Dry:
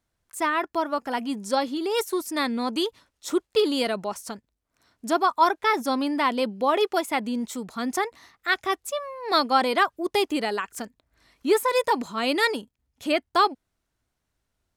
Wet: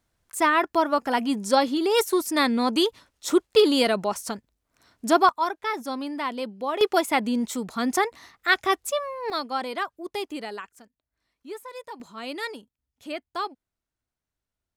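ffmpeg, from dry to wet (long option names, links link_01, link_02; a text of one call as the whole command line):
ffmpeg -i in.wav -af "asetnsamples=nb_out_samples=441:pad=0,asendcmd='5.29 volume volume -6dB;6.81 volume volume 3dB;9.3 volume volume -8dB;10.69 volume volume -17dB;12 volume volume -10dB',volume=4dB" out.wav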